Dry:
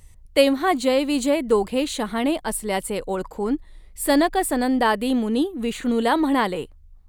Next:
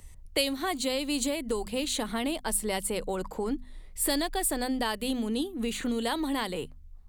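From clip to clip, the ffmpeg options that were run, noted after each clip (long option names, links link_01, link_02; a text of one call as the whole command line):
ffmpeg -i in.wav -filter_complex "[0:a]bandreject=frequency=50:width_type=h:width=6,bandreject=frequency=100:width_type=h:width=6,bandreject=frequency=150:width_type=h:width=6,bandreject=frequency=200:width_type=h:width=6,bandreject=frequency=250:width_type=h:width=6,acrossover=split=120|3000[link_01][link_02][link_03];[link_02]acompressor=threshold=-29dB:ratio=6[link_04];[link_01][link_04][link_03]amix=inputs=3:normalize=0" out.wav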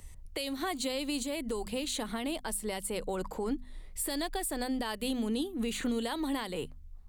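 ffmpeg -i in.wav -af "alimiter=limit=-24dB:level=0:latency=1:release=242" out.wav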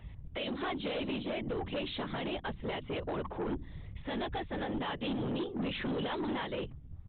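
ffmpeg -i in.wav -af "afftfilt=real='hypot(re,im)*cos(2*PI*random(0))':imag='hypot(re,im)*sin(2*PI*random(1))':win_size=512:overlap=0.75,aresample=8000,asoftclip=type=tanh:threshold=-39dB,aresample=44100,volume=8.5dB" out.wav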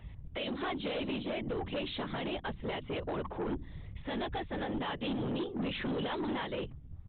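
ffmpeg -i in.wav -af anull out.wav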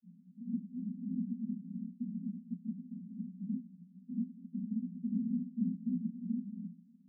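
ffmpeg -i in.wav -af "aeval=exprs='val(0)*gte(abs(val(0)),0.00266)':channel_layout=same,asuperpass=centerf=210:order=20:qfactor=2.4,volume=5dB" out.wav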